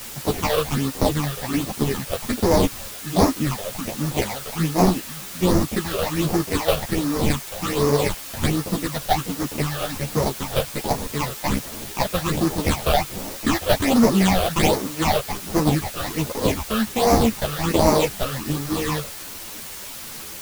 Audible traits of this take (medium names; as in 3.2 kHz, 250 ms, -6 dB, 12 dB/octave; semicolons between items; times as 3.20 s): aliases and images of a low sample rate 1.5 kHz, jitter 20%; phasing stages 8, 1.3 Hz, lowest notch 260–3100 Hz; a quantiser's noise floor 6-bit, dither triangular; a shimmering, thickened sound